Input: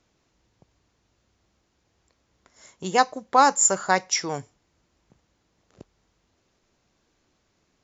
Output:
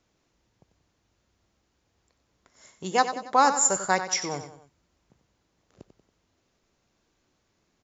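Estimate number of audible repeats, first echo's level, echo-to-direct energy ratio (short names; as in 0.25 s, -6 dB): 3, -10.5 dB, -9.5 dB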